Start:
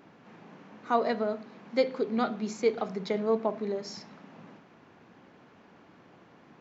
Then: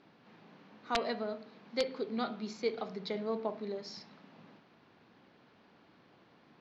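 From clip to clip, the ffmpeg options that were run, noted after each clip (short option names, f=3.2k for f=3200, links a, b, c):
-af "aeval=exprs='(mod(4.73*val(0)+1,2)-1)/4.73':c=same,lowpass=f=4.4k:t=q:w=2.3,bandreject=f=89.3:t=h:w=4,bandreject=f=178.6:t=h:w=4,bandreject=f=267.9:t=h:w=4,bandreject=f=357.2:t=h:w=4,bandreject=f=446.5:t=h:w=4,bandreject=f=535.8:t=h:w=4,bandreject=f=625.1:t=h:w=4,bandreject=f=714.4:t=h:w=4,bandreject=f=803.7:t=h:w=4,bandreject=f=893:t=h:w=4,bandreject=f=982.3:t=h:w=4,bandreject=f=1.0716k:t=h:w=4,bandreject=f=1.1609k:t=h:w=4,bandreject=f=1.2502k:t=h:w=4,bandreject=f=1.3395k:t=h:w=4,bandreject=f=1.4288k:t=h:w=4,bandreject=f=1.5181k:t=h:w=4,bandreject=f=1.6074k:t=h:w=4,bandreject=f=1.6967k:t=h:w=4,bandreject=f=1.786k:t=h:w=4,bandreject=f=1.8753k:t=h:w=4,bandreject=f=1.9646k:t=h:w=4,bandreject=f=2.0539k:t=h:w=4,bandreject=f=2.1432k:t=h:w=4,bandreject=f=2.2325k:t=h:w=4,bandreject=f=2.3218k:t=h:w=4,bandreject=f=2.4111k:t=h:w=4,bandreject=f=2.5004k:t=h:w=4,bandreject=f=2.5897k:t=h:w=4,bandreject=f=2.679k:t=h:w=4,bandreject=f=2.7683k:t=h:w=4,bandreject=f=2.8576k:t=h:w=4,bandreject=f=2.9469k:t=h:w=4,bandreject=f=3.0362k:t=h:w=4,bandreject=f=3.1255k:t=h:w=4,bandreject=f=3.2148k:t=h:w=4,bandreject=f=3.3041k:t=h:w=4,volume=-7dB"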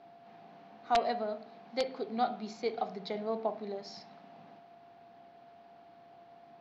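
-af "equalizer=f=740:w=4.4:g=13,aeval=exprs='val(0)+0.00224*sin(2*PI*690*n/s)':c=same,volume=-1.5dB"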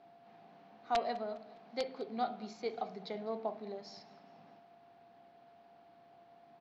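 -af "aecho=1:1:204|408|612:0.0891|0.0374|0.0157,volume=-4.5dB"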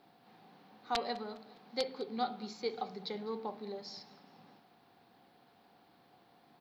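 -af "aexciter=amount=1.9:drive=4.2:freq=3.6k,asuperstop=centerf=660:order=4:qfactor=5.4,volume=1.5dB"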